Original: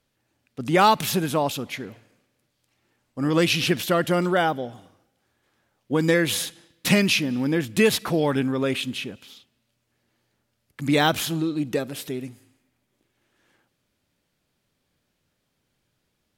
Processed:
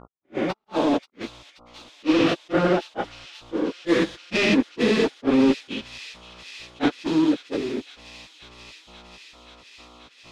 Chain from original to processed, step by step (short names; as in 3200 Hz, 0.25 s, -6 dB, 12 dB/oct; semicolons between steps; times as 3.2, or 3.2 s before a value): stepped spectrum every 0.4 s; resonant low shelf 170 Hz -13.5 dB, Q 1.5; notches 50/100/150/200/250/300/350 Hz; sample leveller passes 3; AGC gain up to 9.5 dB; in parallel at -7 dB: backlash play -20 dBFS; on the sum: buzz 60 Hz, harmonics 23, -37 dBFS -2 dB/oct; step gate "x...xxxx" 166 bpm -60 dB; plain phase-vocoder stretch 0.63×; air absorption 140 m; on a send: thin delay 0.532 s, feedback 85%, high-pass 3500 Hz, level -9 dB; on the sum: attack slew limiter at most 450 dB/s; gain -9 dB